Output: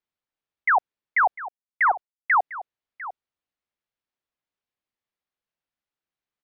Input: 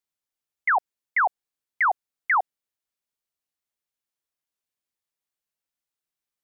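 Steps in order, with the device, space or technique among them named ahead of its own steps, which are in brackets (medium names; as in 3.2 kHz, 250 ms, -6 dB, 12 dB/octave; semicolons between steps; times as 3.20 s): 1.23–2.35 s: gate with hold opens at -20 dBFS; shout across a valley (distance through air 200 m; echo from a far wall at 120 m, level -14 dB); trim +3 dB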